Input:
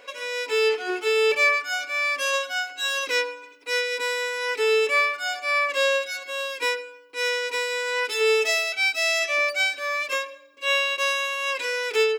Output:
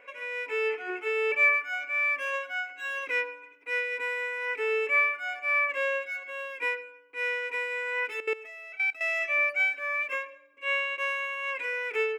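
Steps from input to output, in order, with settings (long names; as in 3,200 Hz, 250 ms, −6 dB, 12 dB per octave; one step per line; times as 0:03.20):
high shelf with overshoot 3,100 Hz −10.5 dB, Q 3
0:08.20–0:09.01: output level in coarse steps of 18 dB
level −8 dB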